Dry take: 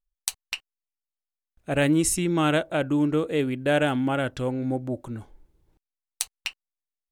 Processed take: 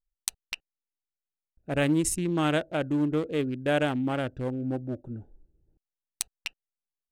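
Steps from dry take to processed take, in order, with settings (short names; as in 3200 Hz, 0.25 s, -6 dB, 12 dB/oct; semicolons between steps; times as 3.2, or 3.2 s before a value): Wiener smoothing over 41 samples; gain -2.5 dB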